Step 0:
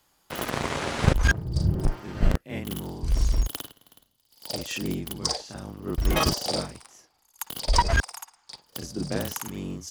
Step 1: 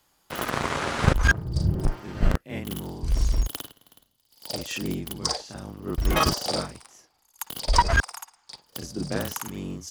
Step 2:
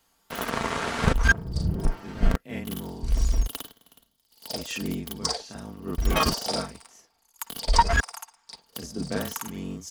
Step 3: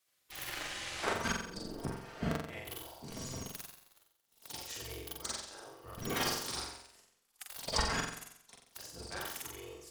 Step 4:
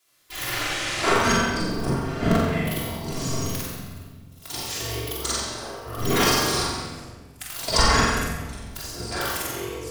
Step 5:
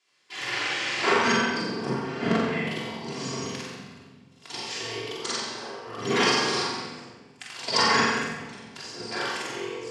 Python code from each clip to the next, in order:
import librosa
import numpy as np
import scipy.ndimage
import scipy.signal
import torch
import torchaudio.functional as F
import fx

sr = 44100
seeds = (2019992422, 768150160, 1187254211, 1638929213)

y1 = fx.dynamic_eq(x, sr, hz=1300.0, q=1.6, threshold_db=-41.0, ratio=4.0, max_db=5)
y2 = fx.wow_flutter(y1, sr, seeds[0], rate_hz=2.1, depth_cents=55.0)
y2 = y2 + 0.4 * np.pad(y2, (int(4.4 * sr / 1000.0), 0))[:len(y2)]
y2 = F.gain(torch.from_numpy(y2), -1.5).numpy()
y3 = fx.spec_gate(y2, sr, threshold_db=-10, keep='weak')
y3 = fx.room_flutter(y3, sr, wall_m=7.7, rt60_s=0.66)
y3 = F.gain(torch.from_numpy(y3), -7.0).numpy()
y4 = fx.room_shoebox(y3, sr, seeds[1], volume_m3=1400.0, walls='mixed', distance_m=3.1)
y4 = F.gain(torch.from_numpy(y4), 9.0).numpy()
y5 = fx.cabinet(y4, sr, low_hz=160.0, low_slope=24, high_hz=6400.0, hz=(170.0, 300.0, 630.0, 1300.0, 3800.0, 6100.0), db=(-8, -7, -9, -6, -5, -6))
y5 = F.gain(torch.from_numpy(y5), 1.5).numpy()